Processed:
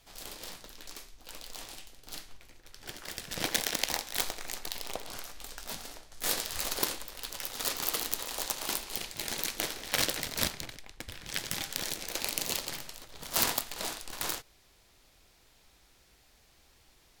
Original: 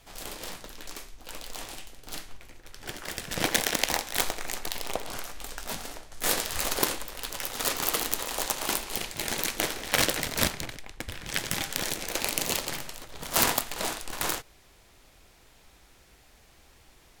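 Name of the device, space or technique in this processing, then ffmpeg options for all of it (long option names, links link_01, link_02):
presence and air boost: -af "equalizer=frequency=4500:width_type=o:width=1.1:gain=4.5,highshelf=frequency=12000:gain=5.5,volume=-7dB"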